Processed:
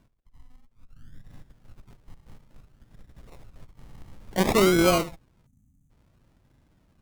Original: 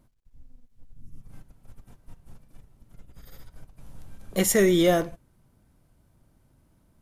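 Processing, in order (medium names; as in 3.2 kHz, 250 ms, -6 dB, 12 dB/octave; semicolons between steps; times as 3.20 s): decimation with a swept rate 34×, swing 60% 0.57 Hz; Chebyshev shaper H 2 -15 dB, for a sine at -11 dBFS; time-frequency box 5.46–5.90 s, 300–5900 Hz -22 dB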